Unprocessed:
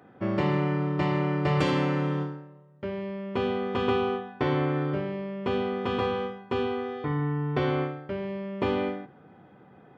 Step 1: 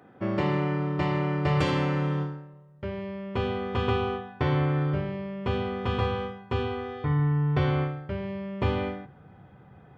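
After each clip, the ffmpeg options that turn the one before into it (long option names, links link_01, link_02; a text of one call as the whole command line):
ffmpeg -i in.wav -af "asubboost=boost=7.5:cutoff=98" out.wav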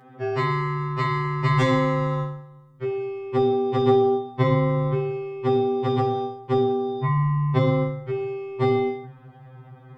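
ffmpeg -i in.wav -af "afftfilt=real='re*2.45*eq(mod(b,6),0)':imag='im*2.45*eq(mod(b,6),0)':win_size=2048:overlap=0.75,volume=7.5dB" out.wav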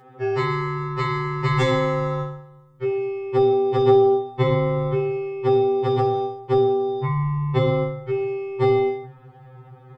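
ffmpeg -i in.wav -af "aecho=1:1:2.3:0.6" out.wav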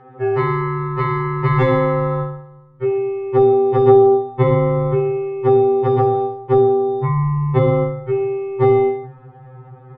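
ffmpeg -i in.wav -af "lowpass=1800,volume=5dB" out.wav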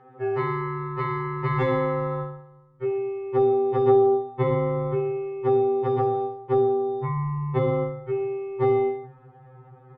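ffmpeg -i in.wav -af "lowshelf=frequency=110:gain=-6.5,volume=-7dB" out.wav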